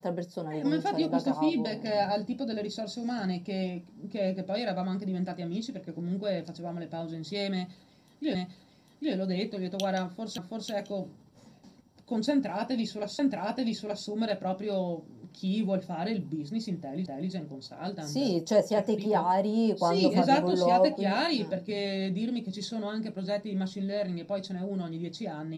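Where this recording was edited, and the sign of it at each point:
8.35 repeat of the last 0.8 s
10.38 repeat of the last 0.33 s
13.19 repeat of the last 0.88 s
17.06 repeat of the last 0.25 s

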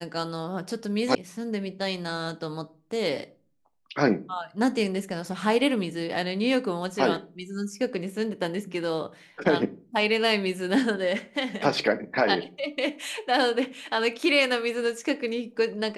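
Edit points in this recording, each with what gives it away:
1.15 sound cut off

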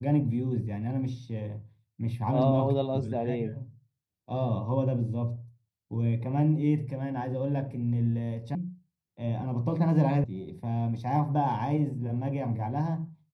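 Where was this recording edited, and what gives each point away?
8.55 sound cut off
10.24 sound cut off

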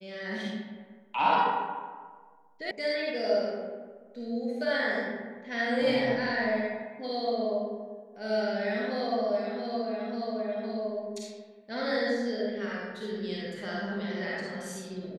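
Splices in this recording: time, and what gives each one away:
2.71 sound cut off

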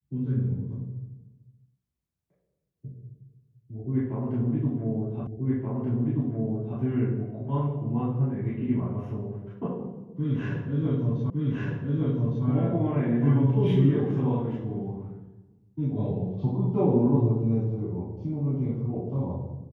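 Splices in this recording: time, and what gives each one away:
5.27 repeat of the last 1.53 s
11.3 repeat of the last 1.16 s

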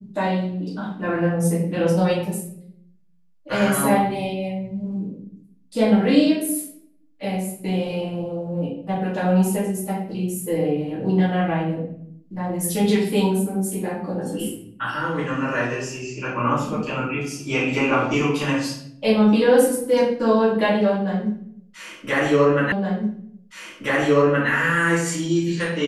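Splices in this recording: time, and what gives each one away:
22.72 repeat of the last 1.77 s

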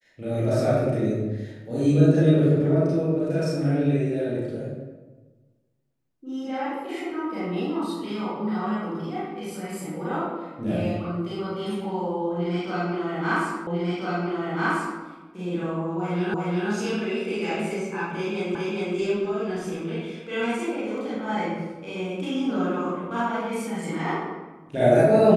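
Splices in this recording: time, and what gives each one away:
13.67 repeat of the last 1.34 s
16.34 repeat of the last 0.36 s
18.55 repeat of the last 0.41 s

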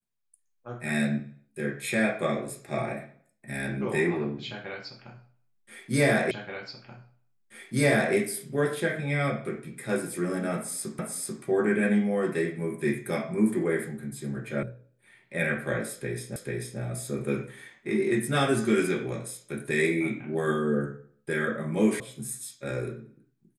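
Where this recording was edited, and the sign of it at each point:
6.31 repeat of the last 1.83 s
10.99 repeat of the last 0.44 s
14.63 sound cut off
16.36 repeat of the last 0.44 s
22 sound cut off

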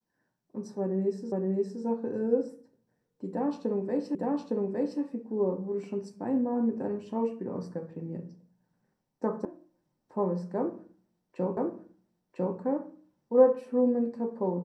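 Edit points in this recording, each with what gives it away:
1.32 repeat of the last 0.52 s
4.15 repeat of the last 0.86 s
9.45 sound cut off
11.57 repeat of the last 1 s

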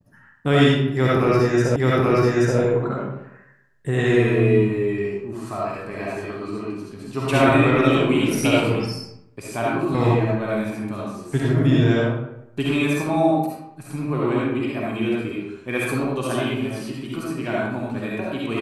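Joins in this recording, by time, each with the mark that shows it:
1.76 repeat of the last 0.83 s

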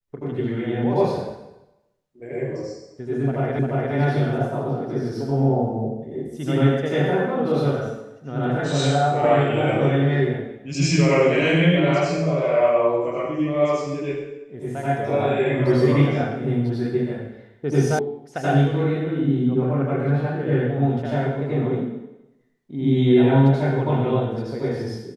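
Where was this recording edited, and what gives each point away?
3.59 repeat of the last 0.35 s
17.99 sound cut off

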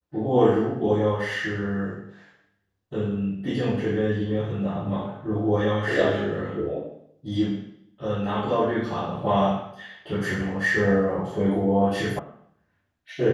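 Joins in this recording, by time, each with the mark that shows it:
12.19 sound cut off

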